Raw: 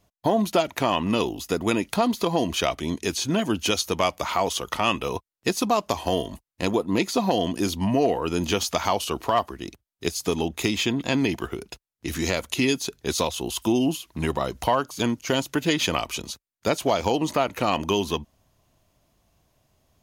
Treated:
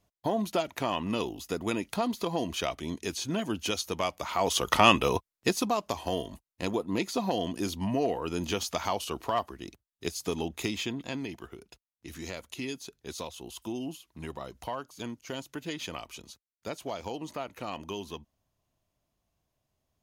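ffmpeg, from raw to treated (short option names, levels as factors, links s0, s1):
-af "volume=1.58,afade=t=in:st=4.33:d=0.43:silence=0.266073,afade=t=out:st=4.76:d=0.99:silence=0.281838,afade=t=out:st=10.57:d=0.69:silence=0.446684"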